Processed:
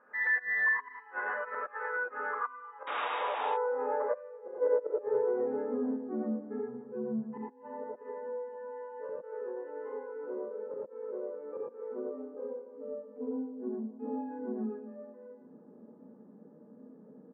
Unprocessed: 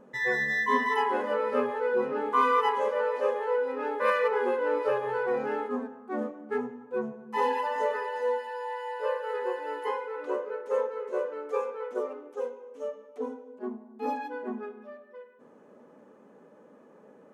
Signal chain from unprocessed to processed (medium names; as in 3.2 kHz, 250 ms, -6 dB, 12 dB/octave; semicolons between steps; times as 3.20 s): resonant high shelf 2.6 kHz -12.5 dB, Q 1.5; feedback delay 297 ms, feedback 59%, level -21 dB; inverted gate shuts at -17 dBFS, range -29 dB; painted sound noise, 2.87–3.46 s, 230–3800 Hz -32 dBFS; gated-style reverb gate 130 ms rising, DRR -5.5 dB; compression 5:1, threshold -24 dBFS, peak gain reduction 8.5 dB; tempo 1×; band-pass sweep 1.5 kHz -> 210 Hz, 2.41–6.32 s; trim +2 dB